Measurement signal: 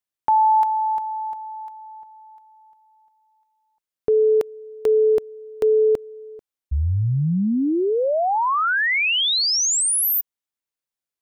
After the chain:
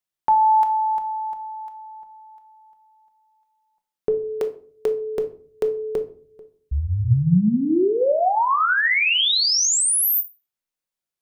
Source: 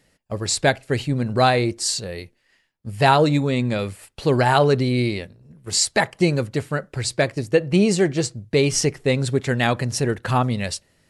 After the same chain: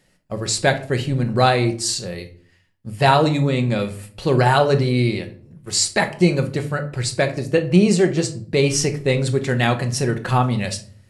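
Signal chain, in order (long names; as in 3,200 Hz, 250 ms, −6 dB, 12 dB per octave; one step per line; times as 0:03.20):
rectangular room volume 430 cubic metres, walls furnished, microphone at 1 metre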